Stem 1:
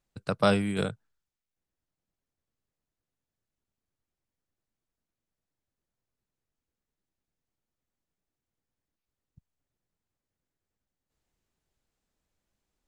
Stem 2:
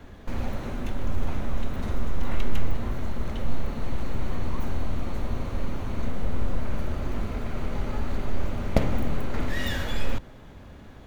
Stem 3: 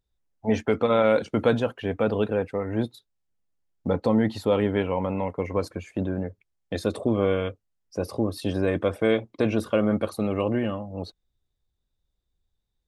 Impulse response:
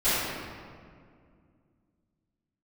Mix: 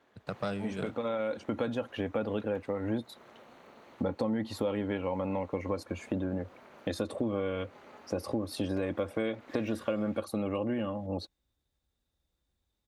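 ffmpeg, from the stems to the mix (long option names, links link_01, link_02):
-filter_complex "[0:a]aeval=exprs='if(lt(val(0),0),0.447*val(0),val(0))':channel_layout=same,highshelf=frequency=6000:gain=-11,volume=-4dB,asplit=2[link_01][link_02];[1:a]highpass=410,highshelf=frequency=6400:gain=-6,tremolo=f=220:d=0.71,volume=-10.5dB[link_03];[2:a]aecho=1:1:3.6:0.34,adelay=150,volume=1dB[link_04];[link_02]apad=whole_len=574761[link_05];[link_04][link_05]sidechaincompress=threshold=-37dB:ratio=8:attack=16:release=1450[link_06];[link_01][link_03][link_06]amix=inputs=3:normalize=0,highpass=58,acompressor=threshold=-30dB:ratio=4"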